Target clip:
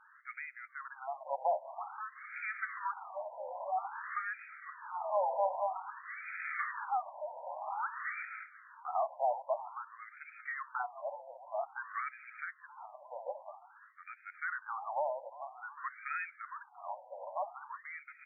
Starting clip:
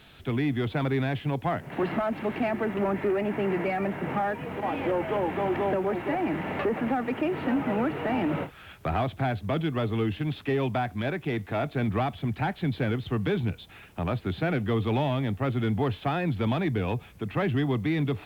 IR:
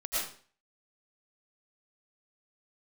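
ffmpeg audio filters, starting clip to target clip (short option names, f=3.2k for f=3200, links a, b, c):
-filter_complex "[0:a]asplit=6[a][b][c][d][e][f];[b]adelay=355,afreqshift=130,volume=-14dB[g];[c]adelay=710,afreqshift=260,volume=-20dB[h];[d]adelay=1065,afreqshift=390,volume=-26dB[i];[e]adelay=1420,afreqshift=520,volume=-32.1dB[j];[f]adelay=1775,afreqshift=650,volume=-38.1dB[k];[a][g][h][i][j][k]amix=inputs=6:normalize=0,asettb=1/sr,asplit=3[l][m][n];[l]atrim=end=5.674[o];[m]atrim=start=5.67:end=6.72,asetpts=PTS-STARTPTS,afade=t=in:d=0.004:c=qsin,afade=t=out:st=1.046:d=0.004:c=qsin,acrusher=bits=6:dc=4:mix=0:aa=0.000001[p];[n]atrim=start=6.716[q];[o][p]acrossfade=d=0.004:c1=hsin:c2=qsin[r];[r][q]acrossfade=d=0.004:c1=qsin:c2=hsin,tremolo=f=0.75:d=0.59,afftfilt=real='re*between(b*sr/1024,710*pow(1800/710,0.5+0.5*sin(2*PI*0.51*pts/sr))/1.41,710*pow(1800/710,0.5+0.5*sin(2*PI*0.51*pts/sr))*1.41)':imag='im*between(b*sr/1024,710*pow(1800/710,0.5+0.5*sin(2*PI*0.51*pts/sr))/1.41,710*pow(1800/710,0.5+0.5*sin(2*PI*0.51*pts/sr))*1.41)':win_size=1024:overlap=0.75"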